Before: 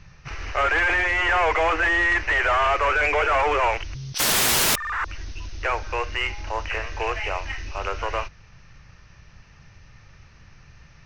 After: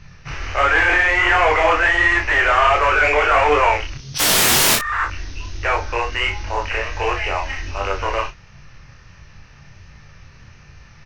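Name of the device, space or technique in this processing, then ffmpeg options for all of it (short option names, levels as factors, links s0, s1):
double-tracked vocal: -filter_complex "[0:a]asplit=2[s0][s1];[s1]adelay=34,volume=0.501[s2];[s0][s2]amix=inputs=2:normalize=0,flanger=delay=20:depth=6.8:speed=1.4,volume=2.37"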